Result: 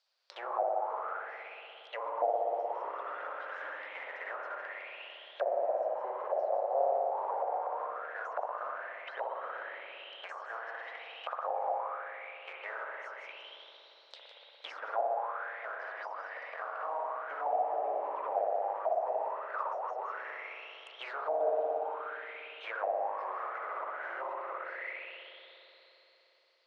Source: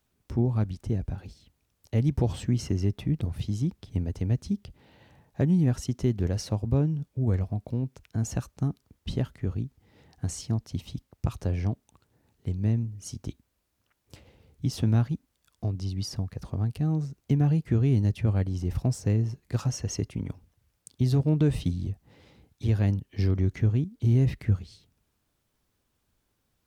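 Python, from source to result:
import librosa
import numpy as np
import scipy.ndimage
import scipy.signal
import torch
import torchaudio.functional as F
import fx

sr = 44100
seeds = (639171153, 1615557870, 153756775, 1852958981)

p1 = fx.wow_flutter(x, sr, seeds[0], rate_hz=2.1, depth_cents=29.0)
p2 = fx.schmitt(p1, sr, flips_db=-28.0)
p3 = p1 + F.gain(torch.from_numpy(p2), -8.0).numpy()
p4 = scipy.signal.sosfilt(scipy.signal.ellip(4, 1.0, 60, 540.0, 'highpass', fs=sr, output='sos'), p3)
p5 = p4 + fx.echo_single(p4, sr, ms=157, db=-9.5, dry=0)
p6 = fx.rev_spring(p5, sr, rt60_s=3.9, pass_ms=(58,), chirp_ms=80, drr_db=-4.5)
p7 = fx.envelope_lowpass(p6, sr, base_hz=710.0, top_hz=4700.0, q=7.1, full_db=-32.5, direction='down')
y = F.gain(torch.from_numpy(p7), -5.0).numpy()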